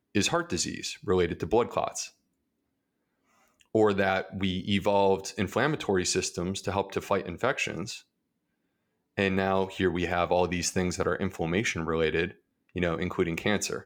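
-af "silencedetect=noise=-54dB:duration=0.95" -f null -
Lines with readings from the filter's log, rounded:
silence_start: 2.12
silence_end: 3.44 | silence_duration: 1.32
silence_start: 8.02
silence_end: 9.17 | silence_duration: 1.15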